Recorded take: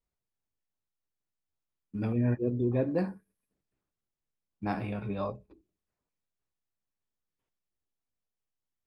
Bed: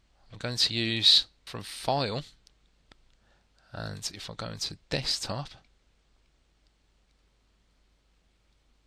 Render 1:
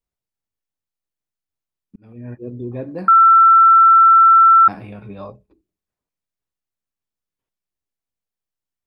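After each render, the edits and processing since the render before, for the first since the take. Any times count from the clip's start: 1.96–2.56 s: fade in; 3.08–4.68 s: bleep 1.34 kHz -6 dBFS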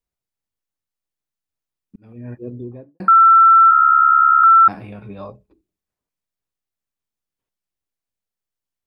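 2.45–3.00 s: studio fade out; 3.70–4.44 s: ring modulator 35 Hz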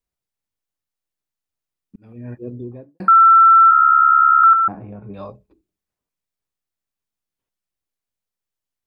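4.53–5.14 s: low-pass 1 kHz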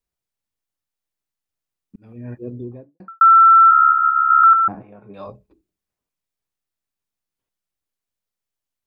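2.64–3.21 s: studio fade out; 3.86–4.30 s: flutter echo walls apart 10.3 m, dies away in 1.5 s; 4.81–5.26 s: high-pass 860 Hz -> 260 Hz 6 dB/octave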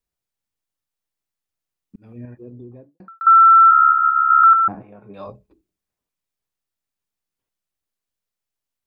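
2.25–3.27 s: compression 2:1, threshold -40 dBFS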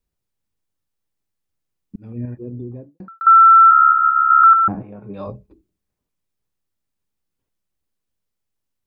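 bass shelf 470 Hz +10 dB; band-stop 690 Hz, Q 18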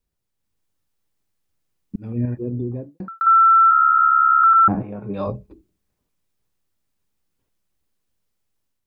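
peak limiter -14 dBFS, peak gain reduction 9 dB; level rider gain up to 5 dB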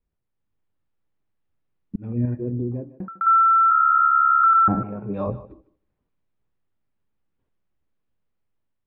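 distance through air 430 m; thinning echo 152 ms, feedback 16%, high-pass 280 Hz, level -15 dB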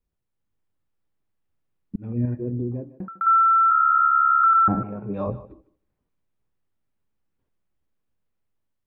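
trim -1 dB

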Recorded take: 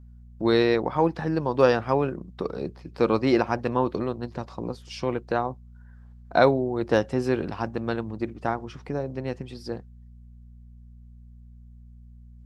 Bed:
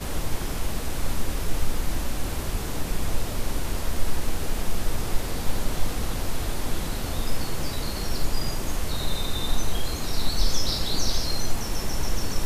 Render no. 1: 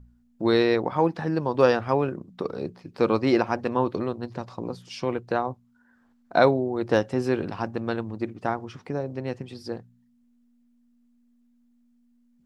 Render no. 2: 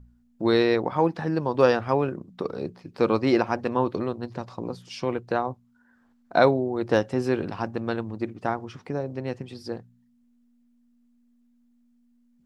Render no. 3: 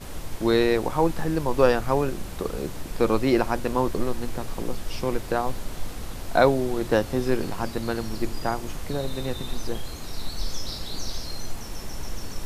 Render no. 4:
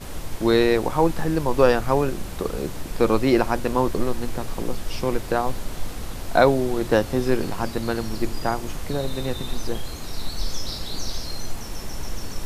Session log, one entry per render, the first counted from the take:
de-hum 60 Hz, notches 3
no audible change
add bed -7 dB
trim +2.5 dB; peak limiter -3 dBFS, peak gain reduction 1.5 dB

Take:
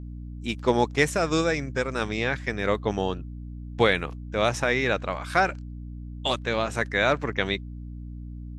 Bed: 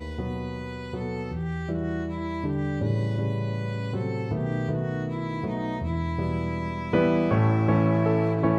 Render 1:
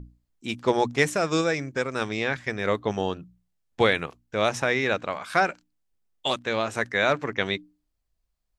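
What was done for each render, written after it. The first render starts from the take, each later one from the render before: hum notches 60/120/180/240/300 Hz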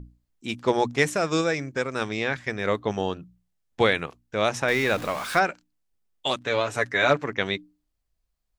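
4.68–5.39 s: jump at every zero crossing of -31.5 dBFS; 6.40–7.17 s: comb 7 ms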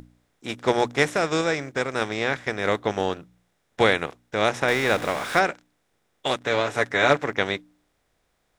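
spectral levelling over time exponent 0.6; upward expansion 1.5:1, over -41 dBFS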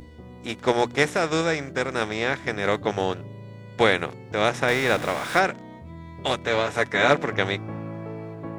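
add bed -12.5 dB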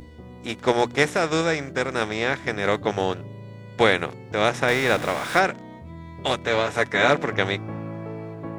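trim +1 dB; peak limiter -3 dBFS, peak gain reduction 2.5 dB

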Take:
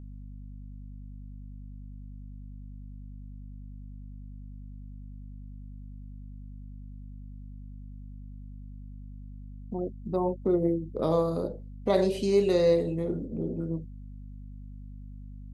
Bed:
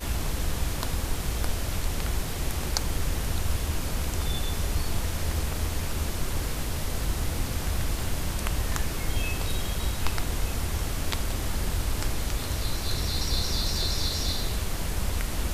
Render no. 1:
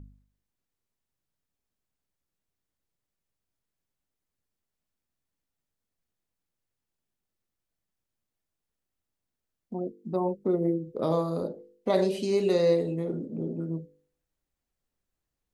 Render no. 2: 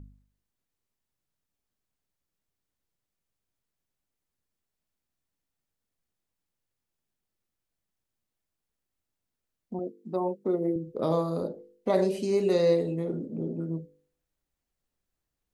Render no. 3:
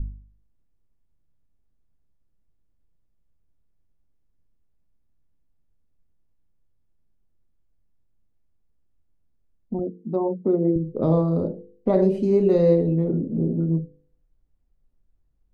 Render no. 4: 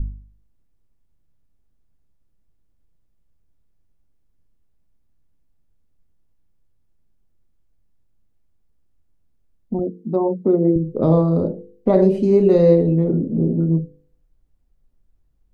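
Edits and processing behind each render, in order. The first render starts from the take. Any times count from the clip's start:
de-hum 50 Hz, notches 10
9.79–10.76 s: Bessel high-pass 230 Hz; 11.90–12.52 s: peaking EQ 3.5 kHz -7 dB
tilt EQ -4.5 dB/octave; hum notches 60/120/180 Hz
trim +4.5 dB

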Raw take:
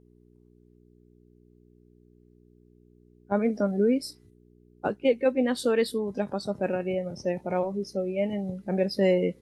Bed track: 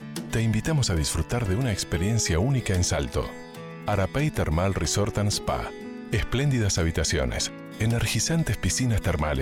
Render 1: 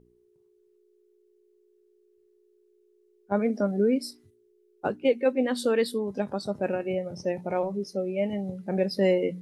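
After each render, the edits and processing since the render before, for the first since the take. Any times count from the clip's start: de-hum 60 Hz, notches 5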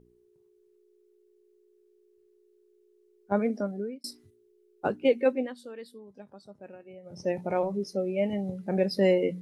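3.32–4.04 s: fade out; 5.27–7.30 s: dip -18.5 dB, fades 0.28 s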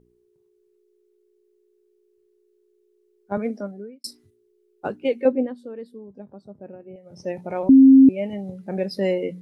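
3.37–4.07 s: three bands expanded up and down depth 70%; 5.25–6.96 s: tilt shelf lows +9.5 dB, about 1.1 kHz; 7.69–8.09 s: bleep 267 Hz -6.5 dBFS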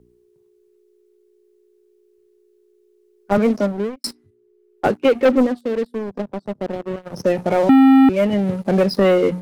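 waveshaping leveller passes 3; three bands compressed up and down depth 40%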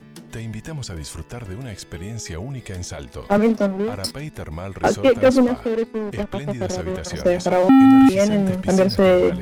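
add bed track -7 dB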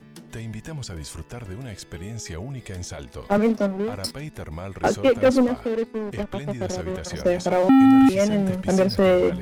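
trim -3 dB

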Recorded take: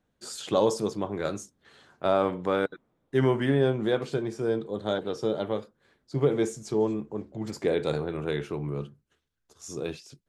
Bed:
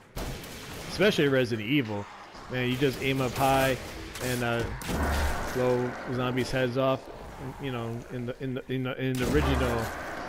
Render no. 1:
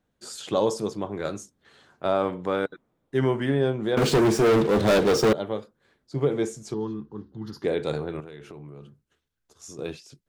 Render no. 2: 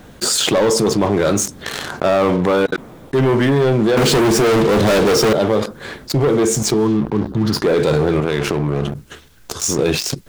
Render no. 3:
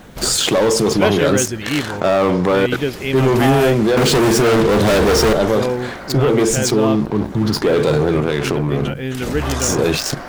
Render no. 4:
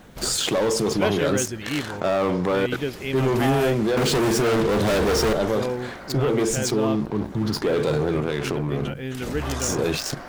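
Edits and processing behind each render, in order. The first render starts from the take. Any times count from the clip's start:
3.97–5.33 s: waveshaping leveller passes 5; 6.74–7.64 s: static phaser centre 2.3 kHz, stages 6; 8.20–9.79 s: compression 8:1, threshold -38 dBFS
waveshaping leveller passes 3; level flattener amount 70%
add bed +5 dB
trim -7 dB

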